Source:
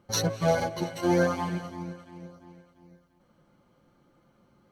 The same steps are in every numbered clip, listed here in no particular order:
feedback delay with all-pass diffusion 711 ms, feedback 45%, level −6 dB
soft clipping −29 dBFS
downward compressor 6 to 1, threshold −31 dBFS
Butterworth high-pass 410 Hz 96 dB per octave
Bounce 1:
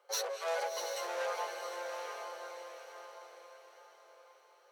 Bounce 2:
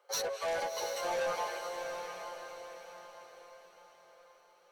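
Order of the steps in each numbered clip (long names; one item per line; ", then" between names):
soft clipping, then feedback delay with all-pass diffusion, then downward compressor, then Butterworth high-pass
Butterworth high-pass, then soft clipping, then downward compressor, then feedback delay with all-pass diffusion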